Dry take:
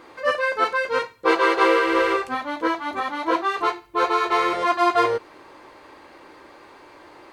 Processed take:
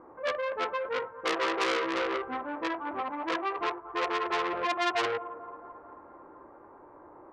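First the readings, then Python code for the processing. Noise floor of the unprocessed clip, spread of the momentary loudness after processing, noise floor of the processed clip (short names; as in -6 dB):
-48 dBFS, 16 LU, -53 dBFS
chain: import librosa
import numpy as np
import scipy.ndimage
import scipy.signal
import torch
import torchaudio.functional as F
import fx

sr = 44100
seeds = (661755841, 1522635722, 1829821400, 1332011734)

y = scipy.signal.sosfilt(scipy.signal.butter(4, 1200.0, 'lowpass', fs=sr, output='sos'), x)
y = fx.echo_thinned(y, sr, ms=220, feedback_pct=75, hz=550.0, wet_db=-16)
y = fx.transformer_sat(y, sr, knee_hz=3300.0)
y = y * 10.0 ** (-4.0 / 20.0)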